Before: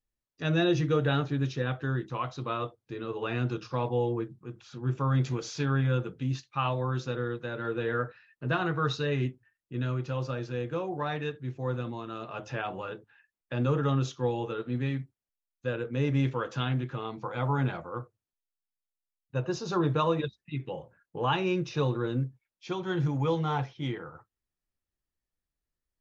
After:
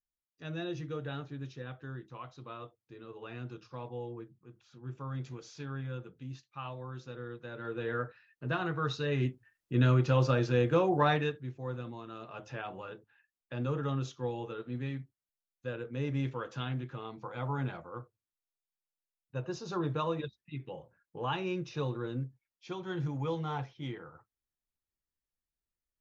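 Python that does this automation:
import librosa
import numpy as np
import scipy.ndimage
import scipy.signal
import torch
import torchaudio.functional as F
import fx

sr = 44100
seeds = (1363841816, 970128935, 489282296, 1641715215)

y = fx.gain(x, sr, db=fx.line((7.01, -12.5), (7.9, -4.5), (8.95, -4.5), (9.81, 6.0), (11.09, 6.0), (11.54, -6.5)))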